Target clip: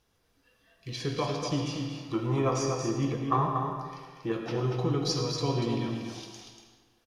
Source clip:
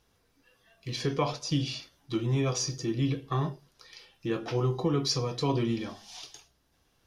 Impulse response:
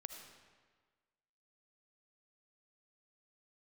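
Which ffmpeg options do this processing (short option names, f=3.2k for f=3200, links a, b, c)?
-filter_complex "[0:a]asettb=1/sr,asplit=3[a][b][c];[a]atrim=end=1.494[d];[b]atrim=start=1.49:end=4.32,asetpts=PTS-STARTPTS,afade=t=in:d=0.004:c=qsin,afade=t=out:st=2.826:d=0.004:c=qsin,equalizer=f=500:t=o:w=1:g=4,equalizer=f=1k:t=o:w=1:g=12,equalizer=f=4k:t=o:w=1:g=-7[e];[c]atrim=start=4.316[f];[d][e]acrossfade=d=0.004:c1=hsin:c2=qsin[g];[g][f]acrossfade=d=0.004:c1=qsin:c2=hsin,aecho=1:1:238:0.531[h];[1:a]atrim=start_sample=2205[i];[h][i]afir=irnorm=-1:irlink=0,volume=2.5dB"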